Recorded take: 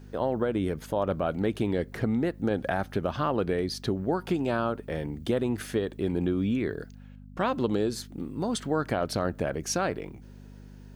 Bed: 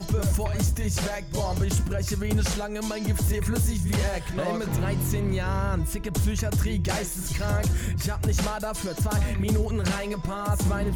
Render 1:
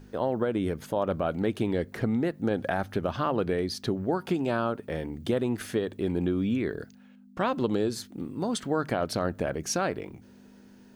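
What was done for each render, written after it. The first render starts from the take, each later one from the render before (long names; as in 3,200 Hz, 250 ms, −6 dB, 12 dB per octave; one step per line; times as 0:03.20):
hum removal 50 Hz, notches 3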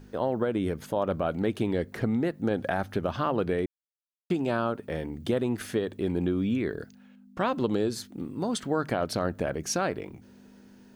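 0:03.66–0:04.30: silence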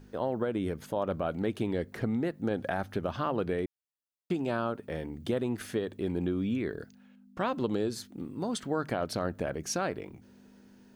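level −3.5 dB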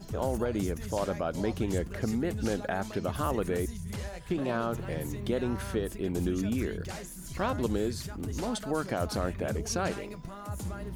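mix in bed −12.5 dB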